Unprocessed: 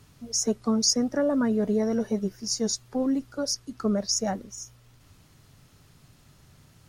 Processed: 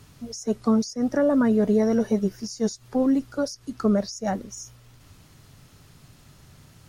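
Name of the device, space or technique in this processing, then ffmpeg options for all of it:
de-esser from a sidechain: -filter_complex "[0:a]asplit=2[link_01][link_02];[link_02]highpass=frequency=7000:poles=1,apad=whole_len=303829[link_03];[link_01][link_03]sidechaincompress=threshold=-40dB:ratio=10:attack=2.2:release=97,volume=4.5dB"

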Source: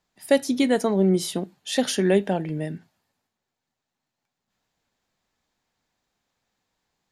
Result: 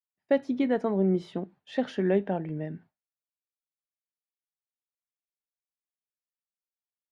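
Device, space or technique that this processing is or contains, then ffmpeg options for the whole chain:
hearing-loss simulation: -af "lowpass=1900,agate=range=-33dB:threshold=-44dB:ratio=3:detection=peak,volume=-5dB"

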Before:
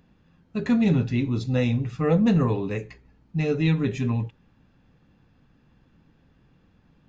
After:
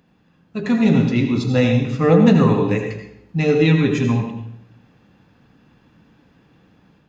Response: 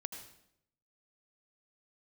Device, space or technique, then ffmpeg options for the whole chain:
far laptop microphone: -filter_complex "[1:a]atrim=start_sample=2205[link_01];[0:a][link_01]afir=irnorm=-1:irlink=0,highpass=frequency=170:poles=1,dynaudnorm=framelen=580:gausssize=3:maxgain=5dB,volume=6dB"

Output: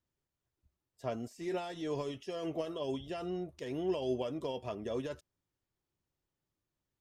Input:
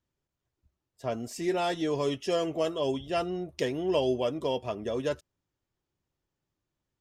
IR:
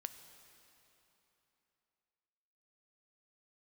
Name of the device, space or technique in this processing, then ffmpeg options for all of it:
de-esser from a sidechain: -filter_complex "[0:a]asplit=2[link_01][link_02];[link_02]highpass=6000,apad=whole_len=309100[link_03];[link_01][link_03]sidechaincompress=threshold=-55dB:ratio=5:attack=3.7:release=46,asettb=1/sr,asplit=3[link_04][link_05][link_06];[link_04]atrim=end=2.264[link_07];[link_05]atrim=start=2.26:end=2.91,asetpts=PTS-STARTPTS,afade=type=in:duration=0.004:curve=qsin,afade=type=out:start_time=0.646:duration=0.004:curve=qsin,bandreject=frequency=7300:width=6.4[link_08];[link_06]atrim=start=2.906[link_09];[link_07][link_08]acrossfade=duration=0.004:curve1=hsin:curve2=qsin[link_10];[link_10][link_09]acrossfade=duration=0.004:curve1=qsin:curve2=hsin,volume=-4dB"

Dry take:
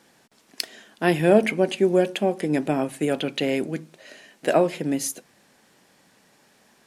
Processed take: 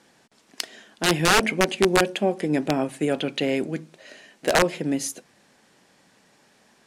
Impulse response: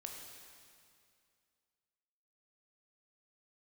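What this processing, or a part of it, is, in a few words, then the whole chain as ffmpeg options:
overflowing digital effects unit: -af "aeval=exprs='(mod(3.16*val(0)+1,2)-1)/3.16':channel_layout=same,lowpass=9900"

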